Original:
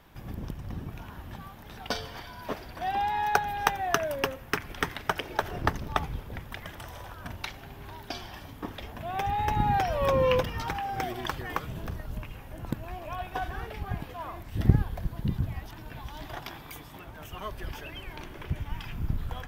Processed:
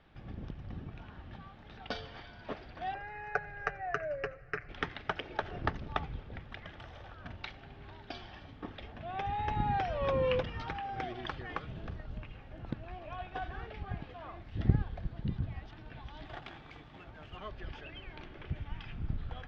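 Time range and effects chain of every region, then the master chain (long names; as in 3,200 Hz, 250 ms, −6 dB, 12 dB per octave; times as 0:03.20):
0:02.94–0:04.69: high-frequency loss of the air 84 metres + phaser with its sweep stopped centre 930 Hz, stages 6 + comb filter 6.8 ms, depth 52%
0:16.25–0:17.37: running median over 9 samples + high-shelf EQ 3,500 Hz +7.5 dB
whole clip: low-pass filter 4,300 Hz 24 dB per octave; notch filter 990 Hz, Q 8.1; level −6 dB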